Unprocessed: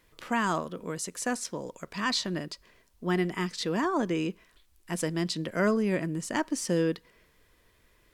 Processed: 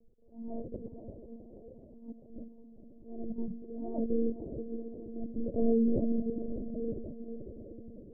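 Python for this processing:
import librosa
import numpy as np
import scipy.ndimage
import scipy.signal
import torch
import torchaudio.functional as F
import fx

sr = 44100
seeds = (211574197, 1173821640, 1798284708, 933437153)

p1 = scipy.signal.sosfilt(scipy.signal.butter(8, 600.0, 'lowpass', fs=sr, output='sos'), x)
p2 = fx.low_shelf(p1, sr, hz=72.0, db=10.0)
p3 = fx.hum_notches(p2, sr, base_hz=60, count=4)
p4 = fx.level_steps(p3, sr, step_db=18)
p5 = p3 + F.gain(torch.from_numpy(p4), 1.5).numpy()
p6 = fx.auto_swell(p5, sr, attack_ms=526.0)
p7 = p6 + fx.echo_diffused(p6, sr, ms=504, feedback_pct=57, wet_db=-9.0, dry=0)
p8 = fx.lpc_monotone(p7, sr, seeds[0], pitch_hz=230.0, order=10)
y = F.gain(torch.from_numpy(p8), -2.5).numpy()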